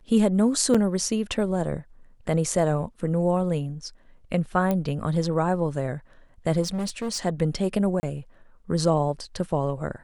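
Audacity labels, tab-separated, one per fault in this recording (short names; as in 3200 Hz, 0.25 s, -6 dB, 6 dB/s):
0.740000	0.750000	gap 5.8 ms
4.710000	4.710000	pop -13 dBFS
6.620000	7.260000	clipped -25 dBFS
8.000000	8.030000	gap 30 ms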